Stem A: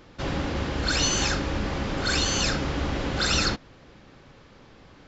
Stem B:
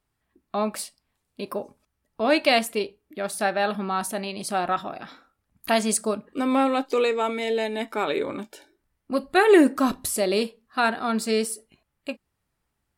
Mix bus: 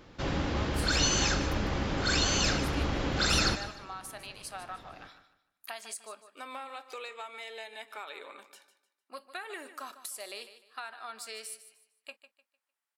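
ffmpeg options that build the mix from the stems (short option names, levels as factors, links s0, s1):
-filter_complex "[0:a]volume=0.708,asplit=2[s0][s1];[s1]volume=0.224[s2];[1:a]highpass=920,acompressor=threshold=0.0316:ratio=6,volume=0.398,asplit=2[s3][s4];[s4]volume=0.224[s5];[s2][s5]amix=inputs=2:normalize=0,aecho=0:1:151|302|453|604:1|0.3|0.09|0.027[s6];[s0][s3][s6]amix=inputs=3:normalize=0"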